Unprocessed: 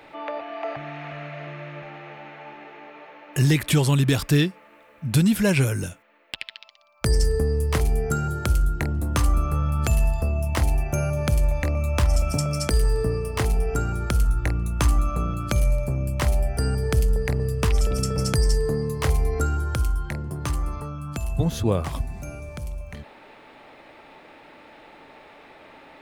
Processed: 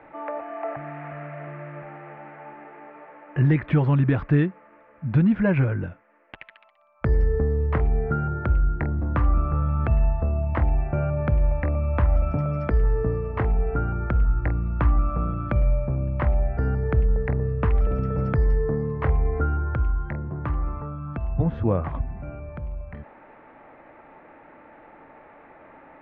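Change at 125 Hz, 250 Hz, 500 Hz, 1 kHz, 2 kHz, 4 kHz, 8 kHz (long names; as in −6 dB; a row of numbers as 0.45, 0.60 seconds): 0.0 dB, 0.0 dB, −1.0 dB, 0.0 dB, −3.5 dB, below −20 dB, below −40 dB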